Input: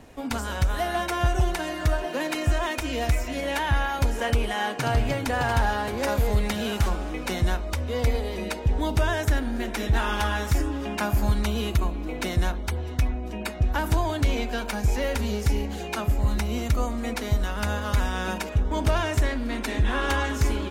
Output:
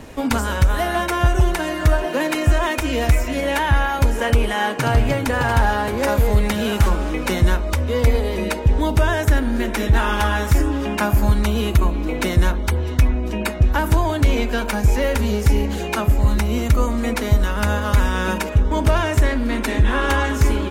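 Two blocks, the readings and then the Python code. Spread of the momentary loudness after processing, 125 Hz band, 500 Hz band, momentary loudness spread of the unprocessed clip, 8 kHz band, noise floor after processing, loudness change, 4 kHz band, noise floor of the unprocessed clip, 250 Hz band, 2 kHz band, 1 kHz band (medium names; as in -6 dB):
4 LU, +7.5 dB, +7.0 dB, 5 LU, +5.5 dB, -26 dBFS, +7.0 dB, +4.5 dB, -33 dBFS, +7.5 dB, +6.5 dB, +6.0 dB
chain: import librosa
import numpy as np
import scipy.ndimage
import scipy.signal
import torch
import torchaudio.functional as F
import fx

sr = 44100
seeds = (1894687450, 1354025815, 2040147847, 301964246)

p1 = fx.notch(x, sr, hz=730.0, q=12.0)
p2 = fx.dynamic_eq(p1, sr, hz=4600.0, q=0.85, threshold_db=-45.0, ratio=4.0, max_db=-4)
p3 = fx.rider(p2, sr, range_db=10, speed_s=0.5)
y = p2 + (p3 * librosa.db_to_amplitude(2.5))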